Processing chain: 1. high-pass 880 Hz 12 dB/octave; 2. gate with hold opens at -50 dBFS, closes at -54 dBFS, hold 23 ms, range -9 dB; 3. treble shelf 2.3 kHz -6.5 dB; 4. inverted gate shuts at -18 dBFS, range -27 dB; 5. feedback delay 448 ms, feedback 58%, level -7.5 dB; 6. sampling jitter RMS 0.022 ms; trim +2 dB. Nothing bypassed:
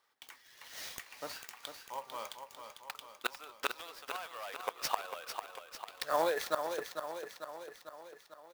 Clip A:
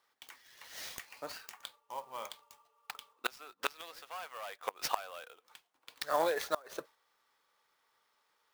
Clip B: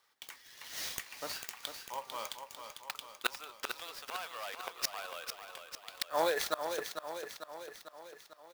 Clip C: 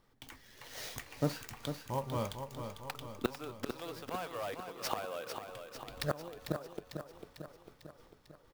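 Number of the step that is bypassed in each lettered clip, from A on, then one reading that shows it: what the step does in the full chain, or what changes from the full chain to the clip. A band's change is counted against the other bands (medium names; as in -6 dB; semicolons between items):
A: 5, momentary loudness spread change +4 LU; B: 3, 8 kHz band +3.5 dB; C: 1, 125 Hz band +25.5 dB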